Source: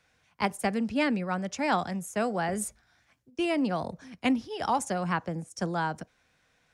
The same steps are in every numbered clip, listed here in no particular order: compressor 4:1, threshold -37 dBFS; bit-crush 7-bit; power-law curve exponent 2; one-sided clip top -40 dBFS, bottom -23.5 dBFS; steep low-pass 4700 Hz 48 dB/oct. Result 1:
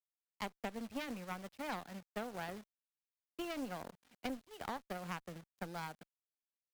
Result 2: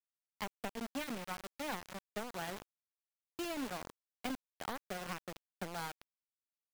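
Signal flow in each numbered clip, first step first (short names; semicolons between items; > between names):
steep low-pass > bit-crush > power-law curve > one-sided clip > compressor; power-law curve > steep low-pass > one-sided clip > compressor > bit-crush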